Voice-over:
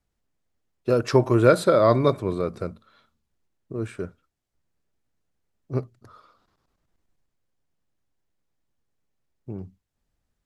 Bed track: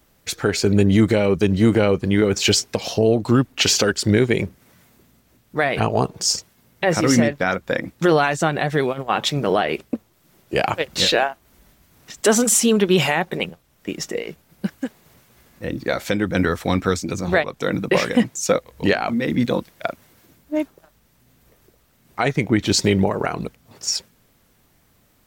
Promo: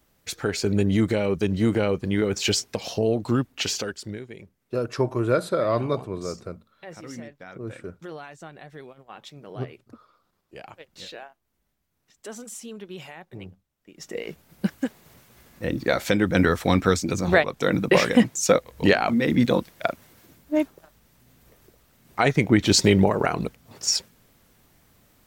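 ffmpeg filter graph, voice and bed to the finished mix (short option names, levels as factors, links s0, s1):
-filter_complex "[0:a]adelay=3850,volume=0.531[s0];[1:a]volume=6.68,afade=t=out:st=3.3:d=0.93:silence=0.149624,afade=t=in:st=13.94:d=0.5:silence=0.0749894[s1];[s0][s1]amix=inputs=2:normalize=0"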